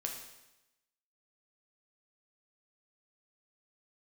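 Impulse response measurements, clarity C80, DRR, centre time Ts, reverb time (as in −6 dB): 7.5 dB, 1.0 dB, 35 ms, 0.95 s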